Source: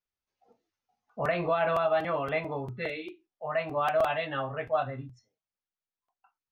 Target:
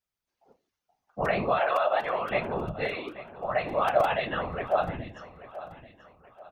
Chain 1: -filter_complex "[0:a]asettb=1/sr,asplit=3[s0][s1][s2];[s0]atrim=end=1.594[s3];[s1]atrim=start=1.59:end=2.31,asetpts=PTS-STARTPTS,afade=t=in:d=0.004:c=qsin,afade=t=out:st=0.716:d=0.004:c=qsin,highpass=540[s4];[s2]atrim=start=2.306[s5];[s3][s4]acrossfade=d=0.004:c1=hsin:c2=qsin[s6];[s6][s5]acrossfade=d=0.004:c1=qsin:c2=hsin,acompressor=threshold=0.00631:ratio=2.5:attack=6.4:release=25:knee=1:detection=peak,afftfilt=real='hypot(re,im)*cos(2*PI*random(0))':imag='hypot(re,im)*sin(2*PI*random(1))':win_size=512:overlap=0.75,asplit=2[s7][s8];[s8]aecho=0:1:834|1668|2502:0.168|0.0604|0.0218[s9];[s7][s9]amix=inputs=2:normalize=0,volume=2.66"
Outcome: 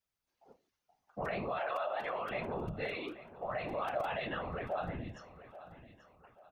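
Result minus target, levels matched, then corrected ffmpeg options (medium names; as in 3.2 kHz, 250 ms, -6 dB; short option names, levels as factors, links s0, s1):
compression: peak gain reduction +14 dB
-filter_complex "[0:a]asettb=1/sr,asplit=3[s0][s1][s2];[s0]atrim=end=1.594[s3];[s1]atrim=start=1.59:end=2.31,asetpts=PTS-STARTPTS,afade=t=in:d=0.004:c=qsin,afade=t=out:st=0.716:d=0.004:c=qsin,highpass=540[s4];[s2]atrim=start=2.306[s5];[s3][s4]acrossfade=d=0.004:c1=hsin:c2=qsin[s6];[s6][s5]acrossfade=d=0.004:c1=qsin:c2=hsin,afftfilt=real='hypot(re,im)*cos(2*PI*random(0))':imag='hypot(re,im)*sin(2*PI*random(1))':win_size=512:overlap=0.75,asplit=2[s7][s8];[s8]aecho=0:1:834|1668|2502:0.168|0.0604|0.0218[s9];[s7][s9]amix=inputs=2:normalize=0,volume=2.66"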